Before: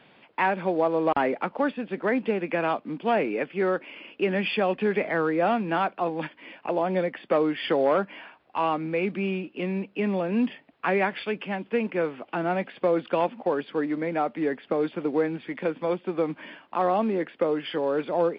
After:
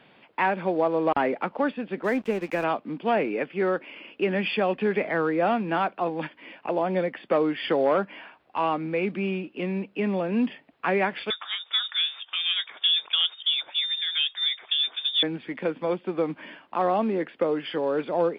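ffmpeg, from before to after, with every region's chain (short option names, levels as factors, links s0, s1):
-filter_complex "[0:a]asettb=1/sr,asplit=3[s0][s1][s2];[s0]atrim=end=2.044[s3];[s1]atrim=start=2.04:end=2.64,asetpts=PTS-STARTPTS,afade=t=in:d=0.004:c=qsin,afade=t=out:st=0.596:d=0.004:c=qsin,highpass=51,aeval=exprs='sgn(val(0))*max(abs(val(0))-0.00668,0)':c=same[s4];[s2]atrim=start=2.636[s5];[s3][s4]acrossfade=d=0.004:c1=hsin:c2=qsin[s6];[s6][s5]acrossfade=d=0.004:c1=qsin:c2=hsin,asettb=1/sr,asplit=3[s7][s8][s9];[s7]atrim=end=11.304[s10];[s8]atrim=start=11.3:end=15.23,asetpts=PTS-STARTPTS,afade=t=in:d=0.004:c=qsin,afade=t=out:st=3.926:d=0.004:c=qsin,acompressor=mode=upward:threshold=0.0158:ratio=2.5:attack=3.2:release=140:knee=2.83:detection=peak,highpass=f=250:w=0.5412,highpass=f=250:w=1.3066,lowpass=f=3300:t=q:w=0.5098,lowpass=f=3300:t=q:w=0.6013,lowpass=f=3300:t=q:w=0.9,lowpass=f=3300:t=q:w=2.563,afreqshift=-3900[s11];[s9]atrim=start=15.226[s12];[s10][s11]acrossfade=d=0.004:c1=hsin:c2=qsin[s13];[s13][s12]acrossfade=d=0.004:c1=qsin:c2=hsin"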